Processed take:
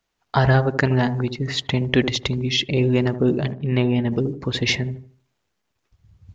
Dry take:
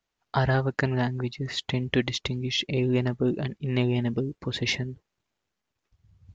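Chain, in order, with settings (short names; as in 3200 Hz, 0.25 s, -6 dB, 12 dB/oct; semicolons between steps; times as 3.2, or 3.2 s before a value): 3.52–4.12 air absorption 170 m; dark delay 77 ms, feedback 32%, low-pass 920 Hz, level -9 dB; gain +6 dB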